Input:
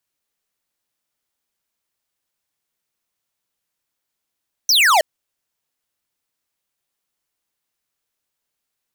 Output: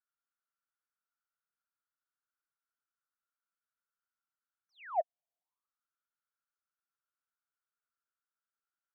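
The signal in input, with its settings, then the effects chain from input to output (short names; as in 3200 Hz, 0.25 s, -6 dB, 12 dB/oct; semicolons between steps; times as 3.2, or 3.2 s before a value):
laser zap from 6200 Hz, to 580 Hz, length 0.32 s square, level -13 dB
LPF 2000 Hz 24 dB/oct; compressor 5:1, threshold -24 dBFS; auto-wah 690–1400 Hz, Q 8.8, down, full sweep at -44.5 dBFS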